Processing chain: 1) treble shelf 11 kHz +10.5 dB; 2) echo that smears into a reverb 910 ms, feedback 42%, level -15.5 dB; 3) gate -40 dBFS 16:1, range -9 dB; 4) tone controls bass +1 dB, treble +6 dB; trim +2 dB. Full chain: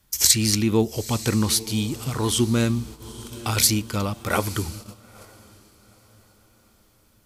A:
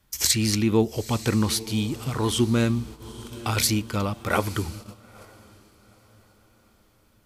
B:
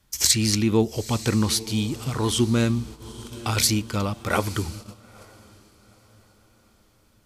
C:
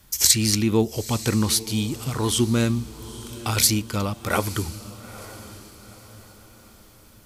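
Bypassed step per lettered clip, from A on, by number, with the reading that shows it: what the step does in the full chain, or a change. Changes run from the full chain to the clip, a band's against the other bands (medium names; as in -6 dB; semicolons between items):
4, 8 kHz band -5.0 dB; 1, 8 kHz band -3.0 dB; 3, momentary loudness spread change +6 LU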